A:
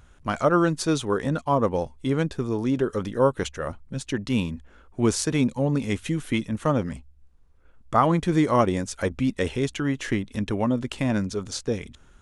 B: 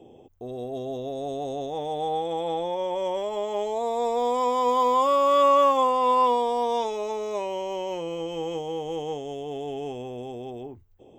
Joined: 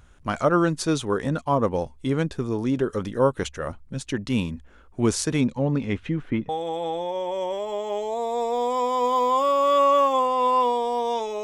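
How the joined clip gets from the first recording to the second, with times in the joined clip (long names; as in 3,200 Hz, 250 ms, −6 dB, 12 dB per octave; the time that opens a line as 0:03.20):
A
0:05.40–0:06.49: low-pass filter 6,700 Hz → 1,300 Hz
0:06.49: continue with B from 0:02.13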